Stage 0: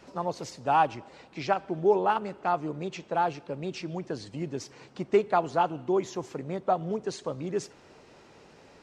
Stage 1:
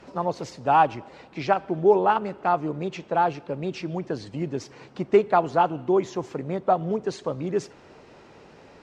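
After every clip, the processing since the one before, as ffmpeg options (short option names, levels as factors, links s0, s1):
-af "aemphasis=mode=reproduction:type=cd,volume=1.68"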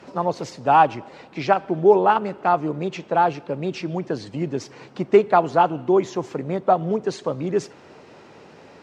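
-af "highpass=96,volume=1.5"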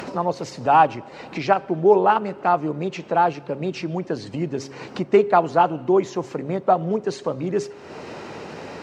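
-af "bandreject=f=3400:w=22,bandreject=f=136.3:t=h:w=4,bandreject=f=272.6:t=h:w=4,bandreject=f=408.9:t=h:w=4,bandreject=f=545.2:t=h:w=4,acompressor=mode=upward:threshold=0.0631:ratio=2.5"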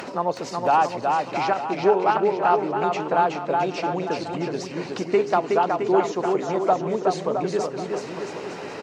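-filter_complex "[0:a]lowshelf=f=180:g=-10.5,alimiter=limit=0.335:level=0:latency=1:release=395,asplit=2[s0][s1];[s1]aecho=0:1:370|666|902.8|1092|1244:0.631|0.398|0.251|0.158|0.1[s2];[s0][s2]amix=inputs=2:normalize=0"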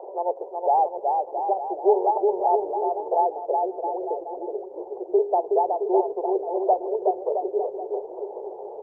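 -af "asuperpass=centerf=570:order=12:qfactor=1.1" -ar 48000 -c:a libopus -b:a 48k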